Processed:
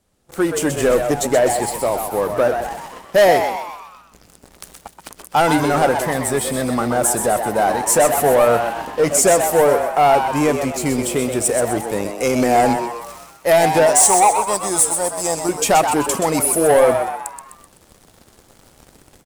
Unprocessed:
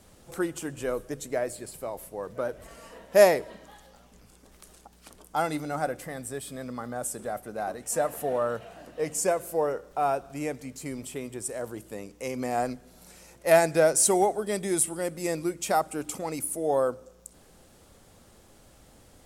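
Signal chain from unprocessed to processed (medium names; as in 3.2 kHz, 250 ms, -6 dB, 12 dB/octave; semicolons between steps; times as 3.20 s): 13.86–15.49 s: FFT filter 100 Hz 0 dB, 230 Hz -12 dB, 470 Hz -6 dB, 870 Hz +8 dB, 2.1 kHz -11 dB, 7.7 kHz +7 dB, 13 kHz -4 dB; level rider gain up to 10.5 dB; waveshaping leveller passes 3; on a send: frequency-shifting echo 127 ms, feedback 49%, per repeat +110 Hz, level -7 dB; on the sum: trim -5.5 dB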